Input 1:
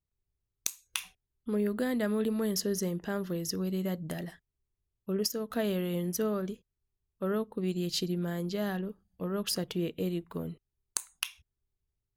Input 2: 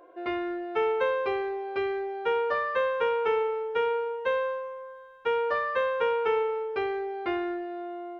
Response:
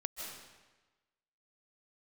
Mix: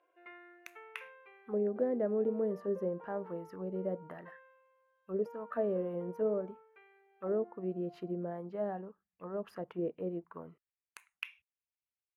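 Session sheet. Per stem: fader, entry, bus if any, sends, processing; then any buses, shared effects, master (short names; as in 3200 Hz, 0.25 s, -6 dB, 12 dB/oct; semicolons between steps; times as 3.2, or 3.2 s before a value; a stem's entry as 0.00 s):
0.0 dB, 0.00 s, no send, band shelf 5400 Hz -12.5 dB
-4.5 dB, 0.00 s, no send, high shelf 3300 Hz -12 dB; compressor 1.5:1, threshold -40 dBFS, peak gain reduction 6.5 dB; auto duck -10 dB, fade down 1.85 s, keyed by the first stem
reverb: off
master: low shelf 410 Hz +9.5 dB; auto-wah 540–2800 Hz, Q 2.4, down, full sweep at -21 dBFS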